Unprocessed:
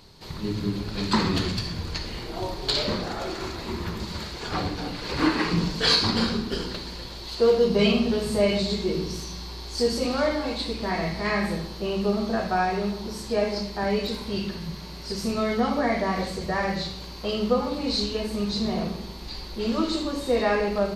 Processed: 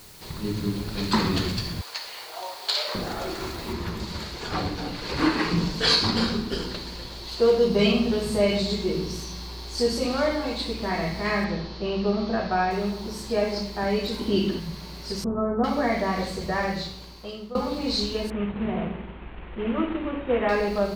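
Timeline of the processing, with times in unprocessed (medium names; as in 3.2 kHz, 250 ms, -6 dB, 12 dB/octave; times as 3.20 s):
1.81–2.95 s: high-pass 600 Hz 24 dB/octave
3.73 s: noise floor step -49 dB -61 dB
11.44–12.71 s: steep low-pass 5.6 kHz
14.19–14.60 s: small resonant body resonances 300/3000 Hz, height 15 dB, ringing for 30 ms
15.24–15.64 s: steep low-pass 1.4 kHz 48 dB/octave
16.62–17.55 s: fade out, to -17.5 dB
18.30–20.49 s: CVSD coder 16 kbps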